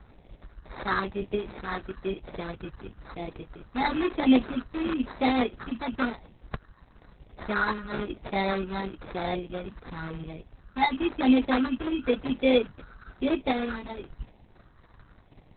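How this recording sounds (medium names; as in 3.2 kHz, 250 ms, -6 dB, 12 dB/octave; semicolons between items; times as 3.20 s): phasing stages 12, 0.99 Hz, lowest notch 540–1400 Hz; aliases and images of a low sample rate 2.9 kHz, jitter 0%; Opus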